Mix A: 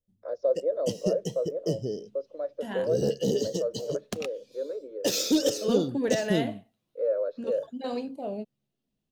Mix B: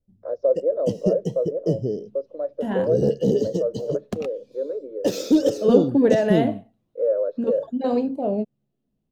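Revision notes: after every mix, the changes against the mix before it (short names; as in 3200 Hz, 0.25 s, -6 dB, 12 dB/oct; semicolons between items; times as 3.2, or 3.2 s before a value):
second voice +4.5 dB; master: add tilt shelf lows +7.5 dB, about 1400 Hz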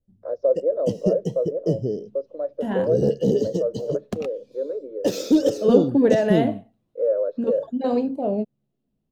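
none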